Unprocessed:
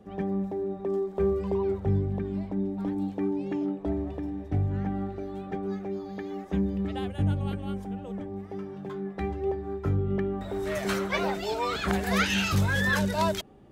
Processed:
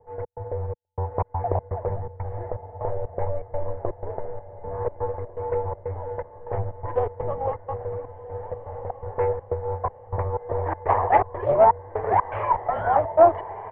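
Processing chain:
flat-topped bell 940 Hz +13 dB 1.1 octaves
comb filter 0.9 ms, depth 71%
automatic gain control gain up to 6 dB
in parallel at −4.5 dB: dead-zone distortion −35.5 dBFS
on the sum: gate pattern "xx.xxx..xx.xx.x" 123 BPM −60 dB
on a send: feedback delay with all-pass diffusion 1,450 ms, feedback 45%, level −13.5 dB
on the sum: single-sideband voice off tune −300 Hz 260–2,100 Hz
highs frequency-modulated by the lows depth 0.34 ms
level −6 dB

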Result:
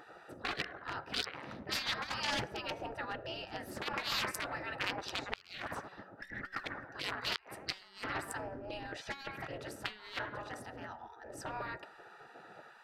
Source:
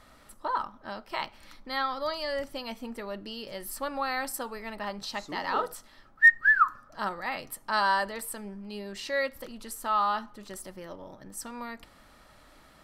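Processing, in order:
adaptive Wiener filter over 41 samples
high-shelf EQ 7,800 Hz −5 dB
delay with a band-pass on its return 107 ms, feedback 35%, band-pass 1,000 Hz, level −20 dB
gate on every frequency bin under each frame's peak −20 dB weak
compressor whose output falls as the input rises −53 dBFS, ratio −0.5
low-shelf EQ 130 Hz −6 dB
hum removal 188.1 Hz, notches 12
gate with flip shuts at −33 dBFS, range −25 dB
highs frequency-modulated by the lows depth 0.54 ms
level +16 dB

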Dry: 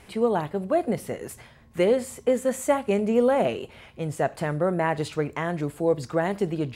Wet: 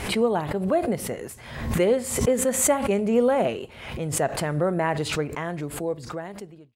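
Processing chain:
fade-out on the ending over 1.73 s
background raised ahead of every attack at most 66 dB per second

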